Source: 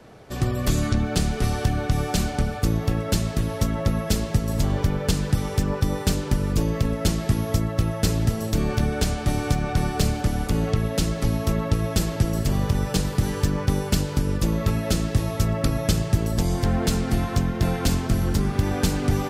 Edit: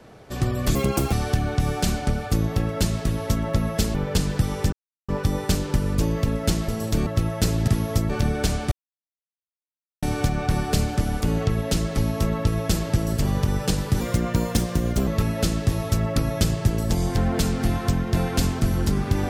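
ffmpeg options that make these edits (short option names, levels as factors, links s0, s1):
-filter_complex "[0:a]asplit=12[s0][s1][s2][s3][s4][s5][s6][s7][s8][s9][s10][s11];[s0]atrim=end=0.754[s12];[s1]atrim=start=0.75:end=1.44,asetpts=PTS-STARTPTS,asetrate=81144,aresample=44100[s13];[s2]atrim=start=1.436:end=4.262[s14];[s3]atrim=start=4.878:end=5.66,asetpts=PTS-STARTPTS,afade=t=out:st=0.778:d=0.004:c=hsin,apad=pad_dur=0.36[s15];[s4]atrim=start=5.66:end=7.262,asetpts=PTS-STARTPTS,afade=t=in:d=0.004:c=hsin[s16];[s5]atrim=start=8.288:end=8.672[s17];[s6]atrim=start=7.678:end=8.292[s18];[s7]atrim=start=7.258:end=7.682[s19];[s8]atrim=start=8.668:end=9.29,asetpts=PTS-STARTPTS,afade=t=out:st=0.618:d=0.004:c=hsin,apad=pad_dur=1.31[s20];[s9]atrim=start=9.29:end=13.274,asetpts=PTS-STARTPTS,afade=t=in:d=0.004:c=hsin[s21];[s10]atrim=start=13.27:end=14.55,asetpts=PTS-STARTPTS,asetrate=52920,aresample=44100[s22];[s11]atrim=start=14.546[s23];[s12][s13]acrossfade=d=0.004:c1=hsin:c2=hsin[s24];[s24][s14]acrossfade=d=0.004:c1=hsin:c2=hsin[s25];[s15][s16]concat=n=2:v=0:a=1[s26];[s25][s26]acrossfade=d=0.004:c1=hsin:c2=hsin[s27];[s27][s17]acrossfade=d=0.004:c1=hsin:c2=hsin[s28];[s28][s18]acrossfade=d=0.004:c1=hsin:c2=hsin[s29];[s29][s19]acrossfade=d=0.004:c1=hsin:c2=hsin[s30];[s20][s21]concat=n=2:v=0:a=1[s31];[s30][s31]acrossfade=d=0.004:c1=hsin:c2=hsin[s32];[s32][s22]acrossfade=d=0.004:c1=hsin:c2=hsin[s33];[s33][s23]acrossfade=d=0.004:c1=hsin:c2=hsin"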